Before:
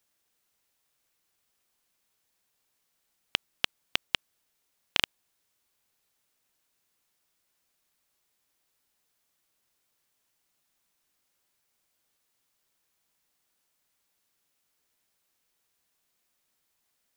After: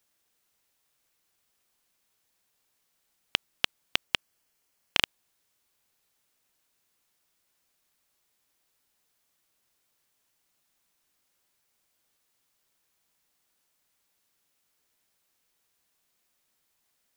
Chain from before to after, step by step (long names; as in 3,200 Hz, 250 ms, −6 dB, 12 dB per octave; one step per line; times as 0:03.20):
0:04.04–0:05.02: notch filter 3,700 Hz, Q 10
level +1.5 dB